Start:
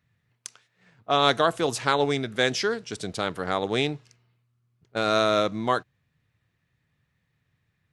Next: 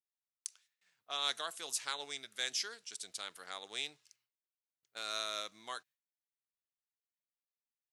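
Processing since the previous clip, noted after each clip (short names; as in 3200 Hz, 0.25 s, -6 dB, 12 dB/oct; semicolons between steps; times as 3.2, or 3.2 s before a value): gate with hold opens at -56 dBFS; differentiator; gain -3 dB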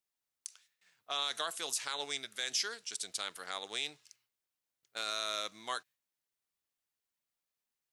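limiter -27.5 dBFS, peak gain reduction 9.5 dB; gain +5.5 dB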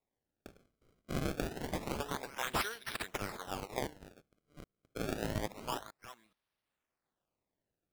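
reverse delay 0.422 s, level -14 dB; decimation with a swept rate 28×, swing 160% 0.27 Hz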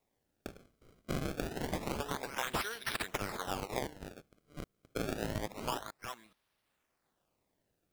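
compressor 4:1, threshold -41 dBFS, peak gain reduction 10.5 dB; gain +8 dB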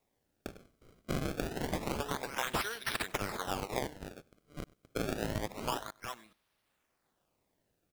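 echo 96 ms -23 dB; gain +1.5 dB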